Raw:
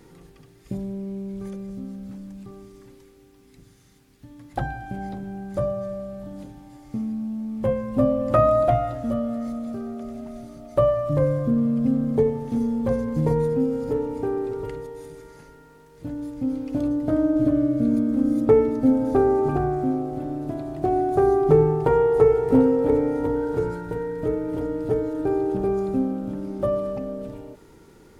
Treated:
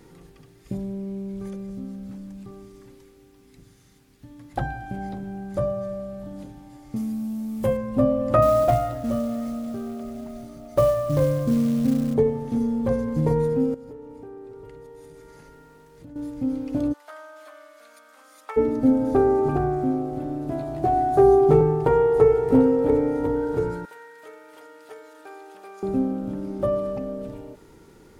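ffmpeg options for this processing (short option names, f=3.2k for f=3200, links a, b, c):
-filter_complex "[0:a]asettb=1/sr,asplit=3[a][b][c];[a]atrim=end=6.964[d];[b]atrim=start=6.96:end=7.77,asetpts=PTS-STARTPTS,afade=t=in:d=0.004:c=qsin,afade=t=out:st=0.806:d=0.004:c=qsin,aemphasis=mode=production:type=75kf[e];[c]atrim=start=7.766[f];[d][e]acrossfade=d=0.004:c1=hsin:c2=qsin[g];[g][f]acrossfade=d=0.004:c1=qsin:c2=hsin,asettb=1/sr,asplit=3[h][i][j];[h]atrim=end=8.424[k];[i]atrim=start=8.42:end=12.14,asetpts=PTS-STARTPTS,afade=t=in:d=0.004:c=qsin,afade=t=out:st=3.716:d=0.004:c=qsin,acrusher=bits=6:mode=log:mix=0:aa=0.000001[l];[j]atrim=start=12.136[m];[k][l]acrossfade=d=0.004:c1=hsin:c2=qsin[n];[n][m]acrossfade=d=0.004:c1=qsin:c2=hsin,asettb=1/sr,asplit=3[o][p][q];[o]atrim=end=13.744[r];[p]atrim=start=13.74:end=16.16,asetpts=PTS-STARTPTS,afade=t=in:d=0.004:c=qsin,afade=t=out:st=2.416:d=0.004:c=qsin,acompressor=threshold=-43dB:ratio=3:attack=3.2:release=140:knee=1:detection=peak[s];[q]atrim=start=16.156[t];[r][s]acrossfade=d=0.004:c1=hsin:c2=qsin[u];[u][t]acrossfade=d=0.004:c1=qsin:c2=hsin,asplit=3[v][w][x];[v]afade=t=out:st=16.92:d=0.02[y];[w]highpass=f=1k:w=0.5412,highpass=f=1k:w=1.3066,afade=t=in:st=16.92:d=0.02,afade=t=out:st=18.56:d=0.02[z];[x]afade=t=in:st=18.56:d=0.02[aa];[y][z][aa]amix=inputs=3:normalize=0,asettb=1/sr,asplit=3[ab][ac][ad];[ab]atrim=end=20.504[ae];[ac]atrim=start=20.5:end=21.61,asetpts=PTS-STARTPTS,afade=t=in:d=0.004:c=qsin,afade=t=out:st=1.106:d=0.004:c=qsin,asplit=2[af][ag];[ag]adelay=15,volume=-2dB[ah];[af][ah]amix=inputs=2:normalize=0,atrim=end_sample=48951[ai];[ad]atrim=start=21.606[aj];[ae][ai]acrossfade=d=0.004:c1=hsin:c2=qsin[ak];[ak][aj]acrossfade=d=0.004:c1=qsin:c2=hsin,asettb=1/sr,asplit=3[al][am][an];[al]atrim=end=23.854[ao];[am]atrim=start=23.85:end=25.83,asetpts=PTS-STARTPTS,afade=t=in:d=0.004:c=qsin,afade=t=out:st=1.976:d=0.004:c=qsin,highpass=1.4k[ap];[an]atrim=start=25.826[aq];[ao][ap]acrossfade=d=0.004:c1=hsin:c2=qsin[ar];[ar][aq]acrossfade=d=0.004:c1=qsin:c2=hsin"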